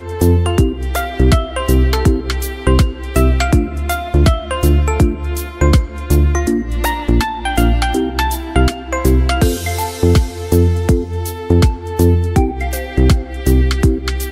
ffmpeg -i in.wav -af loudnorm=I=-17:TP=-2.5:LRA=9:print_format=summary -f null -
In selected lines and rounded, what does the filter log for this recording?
Input Integrated:    -15.5 LUFS
Input True Peak:      -1.5 dBTP
Input LRA:             1.1 LU
Input Threshold:     -25.5 LUFS